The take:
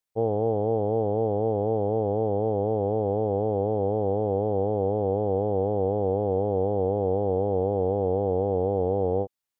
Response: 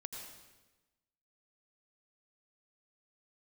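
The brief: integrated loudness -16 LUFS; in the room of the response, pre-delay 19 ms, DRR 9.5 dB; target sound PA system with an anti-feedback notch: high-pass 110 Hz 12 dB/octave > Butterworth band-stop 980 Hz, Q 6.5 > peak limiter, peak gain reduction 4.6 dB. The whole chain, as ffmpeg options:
-filter_complex "[0:a]asplit=2[s0][s1];[1:a]atrim=start_sample=2205,adelay=19[s2];[s1][s2]afir=irnorm=-1:irlink=0,volume=0.447[s3];[s0][s3]amix=inputs=2:normalize=0,highpass=110,asuperstop=centerf=980:order=8:qfactor=6.5,volume=3.55,alimiter=limit=0.473:level=0:latency=1"

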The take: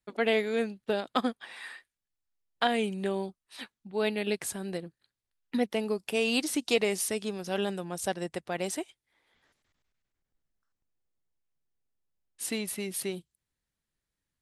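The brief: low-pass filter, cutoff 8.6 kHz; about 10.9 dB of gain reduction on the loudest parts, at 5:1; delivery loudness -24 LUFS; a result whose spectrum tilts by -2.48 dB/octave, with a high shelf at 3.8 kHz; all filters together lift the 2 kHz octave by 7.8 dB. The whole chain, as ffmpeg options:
-af "lowpass=8600,equalizer=f=2000:t=o:g=7.5,highshelf=f=3800:g=8,acompressor=threshold=0.0316:ratio=5,volume=3.55"

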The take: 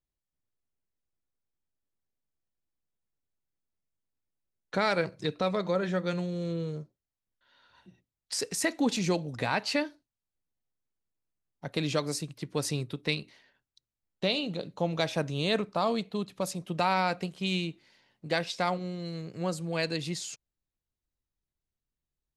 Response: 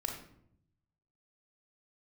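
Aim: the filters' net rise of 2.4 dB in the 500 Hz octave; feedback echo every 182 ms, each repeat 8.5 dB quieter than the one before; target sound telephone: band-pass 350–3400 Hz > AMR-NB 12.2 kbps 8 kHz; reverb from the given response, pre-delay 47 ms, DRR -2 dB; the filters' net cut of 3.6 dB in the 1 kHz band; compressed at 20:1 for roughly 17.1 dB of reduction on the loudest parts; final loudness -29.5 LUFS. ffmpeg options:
-filter_complex "[0:a]equalizer=f=500:t=o:g=6,equalizer=f=1000:t=o:g=-7.5,acompressor=threshold=0.0126:ratio=20,aecho=1:1:182|364|546|728:0.376|0.143|0.0543|0.0206,asplit=2[s0][s1];[1:a]atrim=start_sample=2205,adelay=47[s2];[s1][s2]afir=irnorm=-1:irlink=0,volume=1[s3];[s0][s3]amix=inputs=2:normalize=0,highpass=350,lowpass=3400,volume=4.47" -ar 8000 -c:a libopencore_amrnb -b:a 12200

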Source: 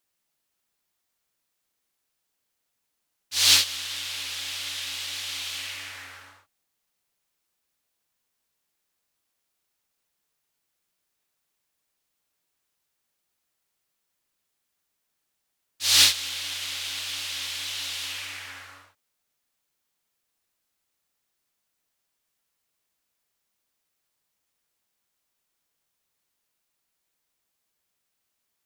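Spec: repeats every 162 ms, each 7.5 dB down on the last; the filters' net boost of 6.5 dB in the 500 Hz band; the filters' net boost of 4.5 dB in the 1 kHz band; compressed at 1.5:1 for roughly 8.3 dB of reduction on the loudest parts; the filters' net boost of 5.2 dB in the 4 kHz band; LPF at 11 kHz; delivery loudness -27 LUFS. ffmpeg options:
-af "lowpass=11000,equalizer=f=500:t=o:g=6.5,equalizer=f=1000:t=o:g=4,equalizer=f=4000:t=o:g=6,acompressor=threshold=0.0251:ratio=1.5,aecho=1:1:162|324|486|648|810:0.422|0.177|0.0744|0.0312|0.0131,volume=0.841"

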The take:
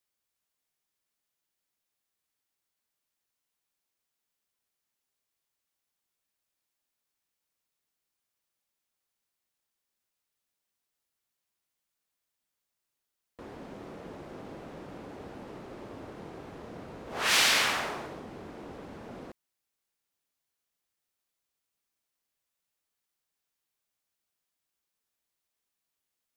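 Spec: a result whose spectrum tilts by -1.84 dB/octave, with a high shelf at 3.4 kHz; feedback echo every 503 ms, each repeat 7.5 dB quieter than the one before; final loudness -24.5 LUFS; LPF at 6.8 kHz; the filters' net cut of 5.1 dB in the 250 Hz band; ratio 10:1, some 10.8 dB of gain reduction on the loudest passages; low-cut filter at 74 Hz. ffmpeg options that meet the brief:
-af "highpass=74,lowpass=6800,equalizer=f=250:t=o:g=-7,highshelf=f=3400:g=5.5,acompressor=threshold=0.0355:ratio=10,aecho=1:1:503|1006|1509|2012|2515:0.422|0.177|0.0744|0.0312|0.0131,volume=5.01"

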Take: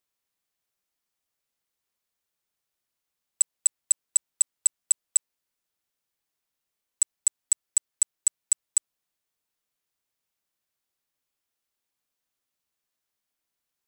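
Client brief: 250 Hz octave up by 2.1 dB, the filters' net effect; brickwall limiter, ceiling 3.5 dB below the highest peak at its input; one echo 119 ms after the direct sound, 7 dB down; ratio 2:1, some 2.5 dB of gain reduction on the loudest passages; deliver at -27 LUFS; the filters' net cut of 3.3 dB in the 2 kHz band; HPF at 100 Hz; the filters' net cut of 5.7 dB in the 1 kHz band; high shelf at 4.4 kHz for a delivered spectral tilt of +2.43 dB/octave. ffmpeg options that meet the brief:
-af "highpass=100,equalizer=f=250:t=o:g=3.5,equalizer=f=1000:t=o:g=-7,equalizer=f=2000:t=o:g=-4,highshelf=f=4400:g=6.5,acompressor=threshold=0.158:ratio=2,alimiter=limit=0.355:level=0:latency=1,aecho=1:1:119:0.447,volume=0.668"

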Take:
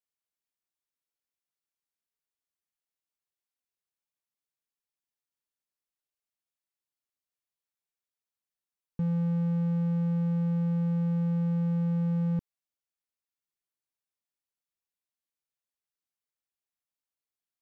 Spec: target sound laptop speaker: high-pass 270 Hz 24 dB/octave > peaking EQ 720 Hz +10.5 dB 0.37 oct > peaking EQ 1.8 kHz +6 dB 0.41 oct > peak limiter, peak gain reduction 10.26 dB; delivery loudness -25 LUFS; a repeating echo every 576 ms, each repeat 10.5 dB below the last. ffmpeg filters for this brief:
-af "highpass=f=270:w=0.5412,highpass=f=270:w=1.3066,equalizer=f=720:t=o:w=0.37:g=10.5,equalizer=f=1800:t=o:w=0.41:g=6,aecho=1:1:576|1152|1728:0.299|0.0896|0.0269,volume=20,alimiter=limit=0.141:level=0:latency=1"

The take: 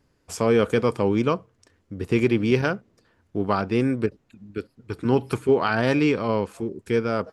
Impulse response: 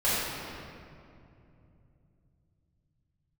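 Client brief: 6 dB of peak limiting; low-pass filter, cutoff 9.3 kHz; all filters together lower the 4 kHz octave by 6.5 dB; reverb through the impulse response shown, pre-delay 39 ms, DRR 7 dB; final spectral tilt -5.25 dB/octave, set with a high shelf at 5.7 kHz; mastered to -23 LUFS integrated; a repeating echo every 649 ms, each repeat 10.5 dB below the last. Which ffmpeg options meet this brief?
-filter_complex "[0:a]lowpass=9300,equalizer=f=4000:t=o:g=-6.5,highshelf=f=5700:g=-8,alimiter=limit=0.211:level=0:latency=1,aecho=1:1:649|1298|1947:0.299|0.0896|0.0269,asplit=2[s0][s1];[1:a]atrim=start_sample=2205,adelay=39[s2];[s1][s2]afir=irnorm=-1:irlink=0,volume=0.0944[s3];[s0][s3]amix=inputs=2:normalize=0,volume=1.33"

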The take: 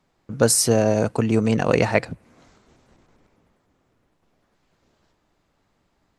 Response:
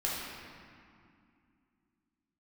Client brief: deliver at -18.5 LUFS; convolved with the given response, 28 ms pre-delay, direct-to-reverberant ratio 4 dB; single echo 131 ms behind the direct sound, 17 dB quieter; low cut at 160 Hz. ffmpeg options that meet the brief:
-filter_complex "[0:a]highpass=160,aecho=1:1:131:0.141,asplit=2[s0][s1];[1:a]atrim=start_sample=2205,adelay=28[s2];[s1][s2]afir=irnorm=-1:irlink=0,volume=0.299[s3];[s0][s3]amix=inputs=2:normalize=0,volume=1.12"

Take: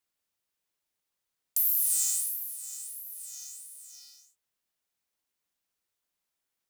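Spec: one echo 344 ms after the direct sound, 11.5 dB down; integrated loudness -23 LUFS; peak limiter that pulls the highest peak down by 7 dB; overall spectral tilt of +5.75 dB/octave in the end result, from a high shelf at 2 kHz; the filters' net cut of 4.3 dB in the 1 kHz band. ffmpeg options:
-af "equalizer=f=1000:t=o:g=-4,highshelf=f=2000:g=-7,alimiter=level_in=1.06:limit=0.0631:level=0:latency=1,volume=0.944,aecho=1:1:344:0.266,volume=5.01"

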